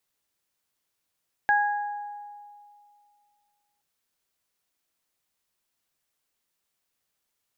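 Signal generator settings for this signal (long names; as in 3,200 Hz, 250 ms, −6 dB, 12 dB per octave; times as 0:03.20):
harmonic partials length 2.32 s, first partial 825 Hz, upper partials 0.5 dB, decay 2.32 s, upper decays 1.03 s, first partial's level −19.5 dB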